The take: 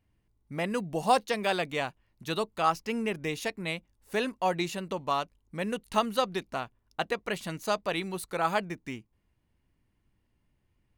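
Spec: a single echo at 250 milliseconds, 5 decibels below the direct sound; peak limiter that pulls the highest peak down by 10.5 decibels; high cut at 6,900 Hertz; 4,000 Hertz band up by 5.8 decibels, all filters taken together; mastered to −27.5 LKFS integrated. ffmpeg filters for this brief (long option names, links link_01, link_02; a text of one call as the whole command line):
ffmpeg -i in.wav -af "lowpass=6900,equalizer=frequency=4000:width_type=o:gain=7.5,alimiter=limit=-19.5dB:level=0:latency=1,aecho=1:1:250:0.562,volume=4.5dB" out.wav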